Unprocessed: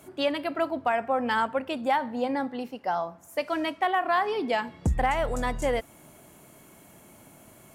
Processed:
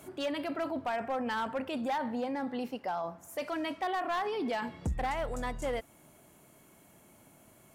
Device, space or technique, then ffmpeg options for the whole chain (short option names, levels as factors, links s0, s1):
clipper into limiter: -af "asoftclip=type=hard:threshold=0.0944,alimiter=level_in=1.5:limit=0.0631:level=0:latency=1:release=12,volume=0.668"